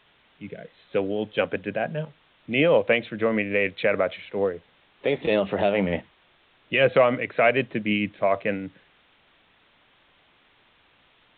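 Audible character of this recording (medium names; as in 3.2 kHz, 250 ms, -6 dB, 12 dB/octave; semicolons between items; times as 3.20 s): tremolo triangle 6.6 Hz, depth 35%; a quantiser's noise floor 10-bit, dither triangular; µ-law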